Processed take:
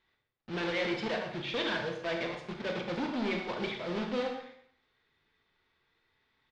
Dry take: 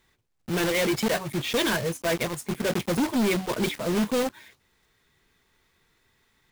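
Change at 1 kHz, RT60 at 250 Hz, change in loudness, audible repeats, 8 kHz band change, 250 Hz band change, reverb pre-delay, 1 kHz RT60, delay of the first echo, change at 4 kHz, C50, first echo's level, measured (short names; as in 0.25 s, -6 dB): -6.0 dB, 0.65 s, -8.0 dB, 1, -22.5 dB, -9.5 dB, 29 ms, 0.65 s, 0.117 s, -7.0 dB, 5.0 dB, -11.0 dB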